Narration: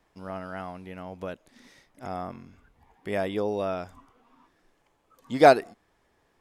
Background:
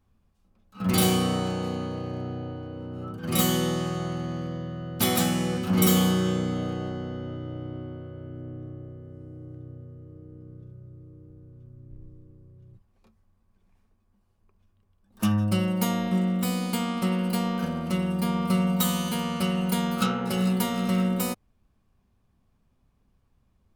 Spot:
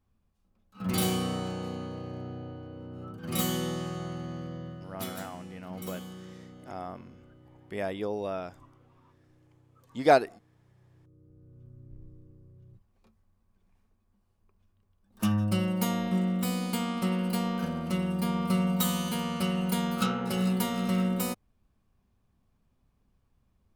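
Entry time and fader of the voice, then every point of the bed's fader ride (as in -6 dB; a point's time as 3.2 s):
4.65 s, -4.5 dB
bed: 4.69 s -6 dB
5.3 s -21 dB
10.53 s -21 dB
11.66 s -3 dB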